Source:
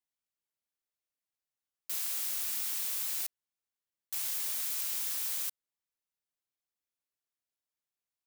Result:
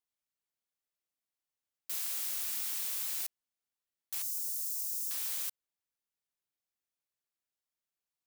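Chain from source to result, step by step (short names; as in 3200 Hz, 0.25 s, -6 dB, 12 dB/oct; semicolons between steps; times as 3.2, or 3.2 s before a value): 4.22–5.11 inverse Chebyshev band-stop 180–1400 Hz, stop band 70 dB; gain -1.5 dB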